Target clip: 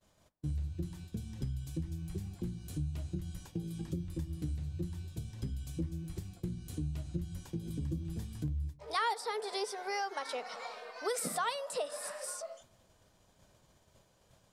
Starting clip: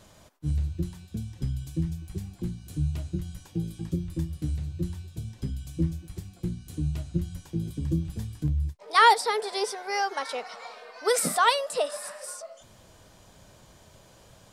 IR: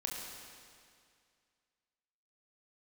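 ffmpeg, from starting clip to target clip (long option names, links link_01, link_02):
-filter_complex "[0:a]bandreject=frequency=54.95:width_type=h:width=4,bandreject=frequency=109.9:width_type=h:width=4,bandreject=frequency=164.85:width_type=h:width=4,bandreject=frequency=219.8:width_type=h:width=4,bandreject=frequency=274.75:width_type=h:width=4,bandreject=frequency=329.7:width_type=h:width=4,agate=range=-33dB:threshold=-45dB:ratio=3:detection=peak,asplit=2[link_01][link_02];[link_02]lowpass=1300[link_03];[1:a]atrim=start_sample=2205,afade=type=out:start_time=0.35:duration=0.01,atrim=end_sample=15876[link_04];[link_03][link_04]afir=irnorm=-1:irlink=0,volume=-18.5dB[link_05];[link_01][link_05]amix=inputs=2:normalize=0,acompressor=threshold=-35dB:ratio=2.5,volume=-1.5dB"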